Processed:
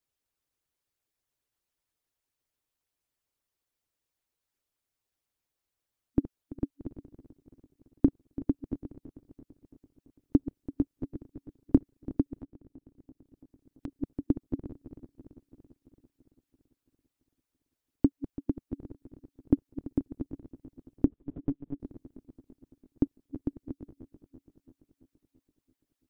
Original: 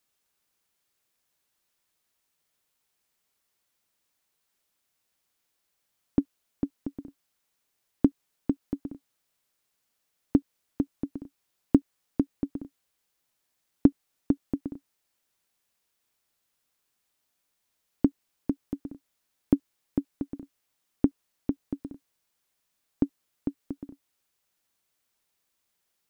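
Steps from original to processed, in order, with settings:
feedback delay that plays each chunk backwards 168 ms, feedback 77%, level −14 dB
harmonic and percussive parts rebalanced harmonic −14 dB
low-shelf EQ 410 Hz +10.5 dB
0:12.35–0:13.88: downward compressor 2 to 1, threshold −45 dBFS, peak gain reduction 21.5 dB
parametric band 190 Hz −10 dB 0.47 octaves
0:21.06–0:21.80: one-pitch LPC vocoder at 8 kHz 140 Hz
level −6.5 dB

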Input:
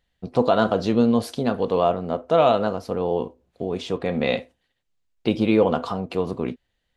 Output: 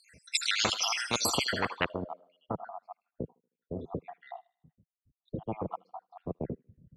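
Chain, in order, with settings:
time-frequency cells dropped at random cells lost 77%
in parallel at −2 dB: speech leveller within 5 dB 2 s
on the sum: low-pass filter sweep 7,900 Hz → 160 Hz, 0:01.22–0:02.14
delay with a high-pass on its return 78 ms, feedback 44%, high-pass 2,700 Hz, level −14.5 dB
soft clipping −4.5 dBFS, distortion −19 dB
high-pass filter 100 Hz
every bin compressed towards the loudest bin 10 to 1
level −6 dB

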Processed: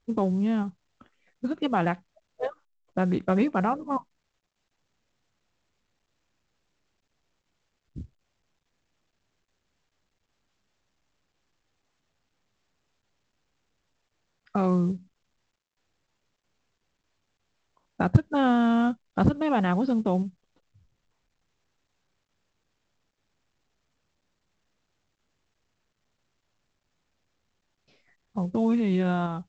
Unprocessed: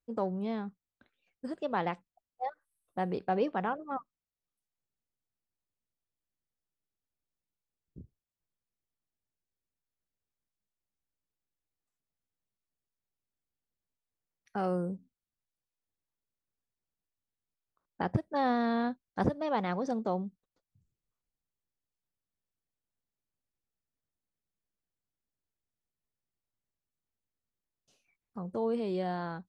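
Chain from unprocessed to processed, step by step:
formants moved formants −3 semitones
dynamic equaliser 510 Hz, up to −7 dB, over −45 dBFS, Q 1.1
in parallel at −2.5 dB: output level in coarse steps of 13 dB
on the sum: high-frequency loss of the air 180 metres
level +8 dB
mu-law 128 kbit/s 16,000 Hz

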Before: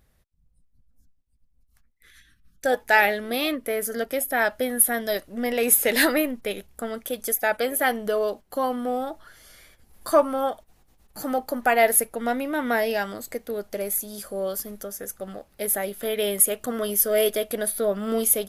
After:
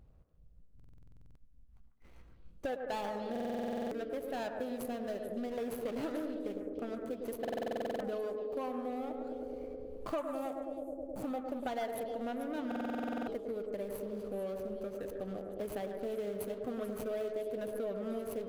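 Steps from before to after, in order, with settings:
running median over 25 samples
bass and treble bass +4 dB, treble −3 dB
feedback echo with a band-pass in the loop 105 ms, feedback 84%, band-pass 400 Hz, level −6 dB
downward compressor 4 to 1, threshold −38 dBFS, peak gain reduction 19.5 dB
0:10.18–0:11.23: high shelf with overshoot 6,200 Hz +8.5 dB, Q 1.5
echo through a band-pass that steps 146 ms, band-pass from 1,400 Hz, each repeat 1.4 octaves, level −5 dB
buffer that repeats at 0:00.75/0:03.31/0:07.40/0:12.67, samples 2,048, times 12

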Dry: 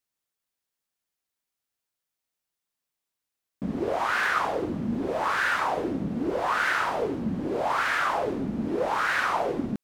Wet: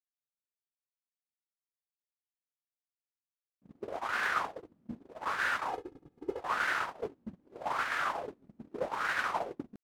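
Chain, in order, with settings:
noise gate −24 dBFS, range −39 dB
0:05.70–0:06.41: comb filter 2.4 ms, depth 82%
downward compressor 2 to 1, threshold −30 dBFS, peak gain reduction 5.5 dB

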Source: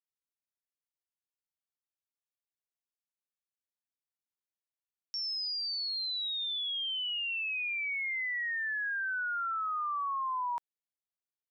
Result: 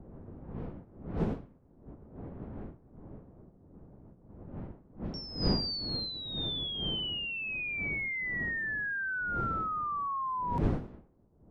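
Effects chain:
wind on the microphone 220 Hz −36 dBFS
low-pass that shuts in the quiet parts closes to 840 Hz, open at −24.5 dBFS
low-shelf EQ 260 Hz −5 dB

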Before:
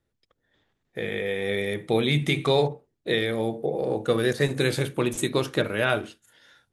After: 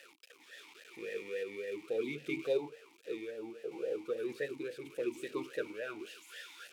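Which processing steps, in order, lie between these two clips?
spike at every zero crossing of −15.5 dBFS
sample-and-hold tremolo
formant filter swept between two vowels e-u 3.6 Hz
level −2 dB

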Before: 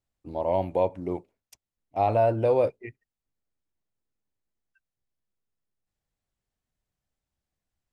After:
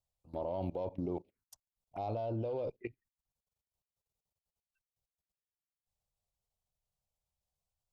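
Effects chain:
harmonic generator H 5 −27 dB, 8 −34 dB, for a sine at −12 dBFS
output level in coarse steps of 18 dB
phaser swept by the level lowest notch 290 Hz, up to 1,800 Hz, full sweep at −36 dBFS
level +1 dB

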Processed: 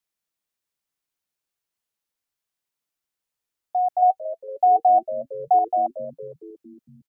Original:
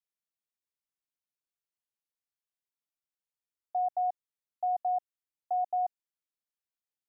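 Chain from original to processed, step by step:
0:04.02–0:05.59: hollow resonant body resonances 460/760 Hz, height 11 dB, ringing for 55 ms
echo with shifted repeats 229 ms, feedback 60%, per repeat −99 Hz, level −14 dB
level +8 dB

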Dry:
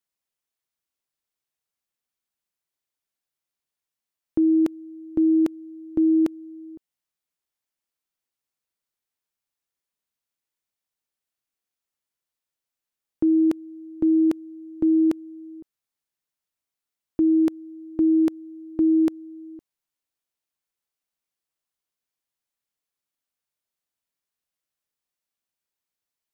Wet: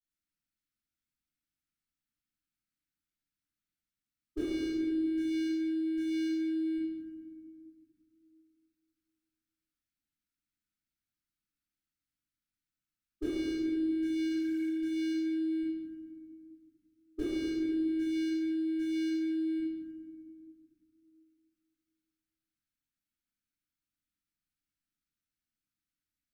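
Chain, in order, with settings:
leveller curve on the samples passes 1
healed spectral selection 0:14.29–0:14.65, 420–1,100 Hz before
leveller curve on the samples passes 5
linear-phase brick-wall band-stop 340–1,200 Hz
bass and treble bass +2 dB, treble +6 dB
gate with flip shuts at −29 dBFS, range −33 dB
parametric band 330 Hz +4.5 dB 0.62 octaves
convolution reverb RT60 2.1 s, pre-delay 3 ms, DRR −18.5 dB
one half of a high-frequency compander decoder only
level −8.5 dB

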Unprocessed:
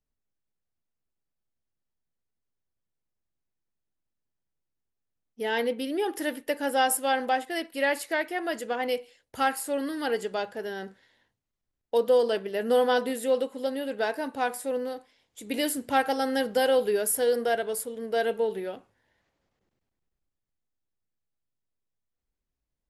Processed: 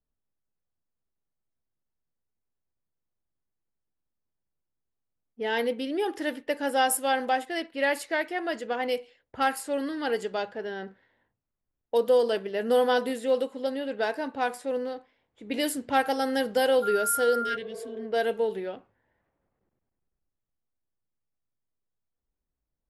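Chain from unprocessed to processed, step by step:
0:17.44–0:18.03: healed spectral selection 290–1,600 Hz after
low-pass that shuts in the quiet parts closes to 1,500 Hz, open at −22.5 dBFS
0:16.82–0:17.55: steady tone 1,400 Hz −28 dBFS

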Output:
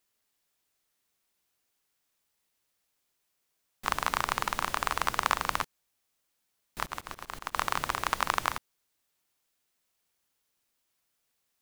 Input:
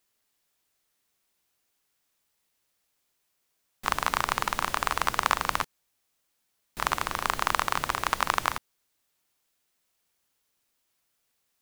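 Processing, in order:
0:06.84–0:07.55: volume swells 174 ms
level −2.5 dB

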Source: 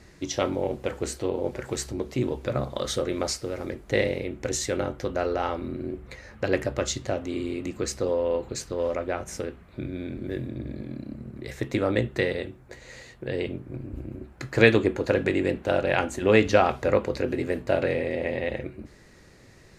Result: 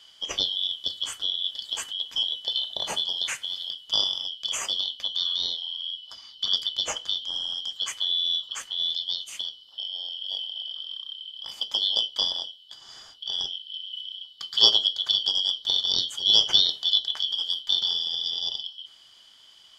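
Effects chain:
band-splitting scrambler in four parts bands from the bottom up 3412
dynamic equaliser 460 Hz, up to +5 dB, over −52 dBFS, Q 1.7
level −1 dB

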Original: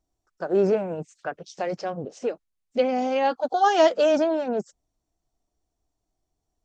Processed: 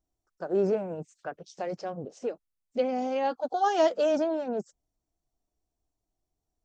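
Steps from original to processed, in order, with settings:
parametric band 2,400 Hz −4 dB 2.2 octaves
level −4.5 dB

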